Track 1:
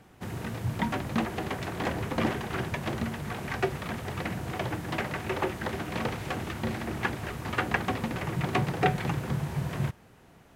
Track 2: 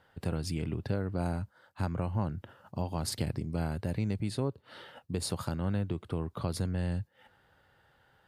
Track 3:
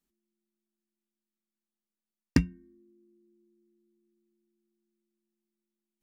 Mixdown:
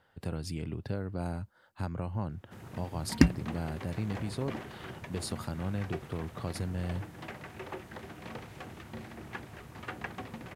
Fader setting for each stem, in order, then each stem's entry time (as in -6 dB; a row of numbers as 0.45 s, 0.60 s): -12.0 dB, -3.0 dB, +2.5 dB; 2.30 s, 0.00 s, 0.85 s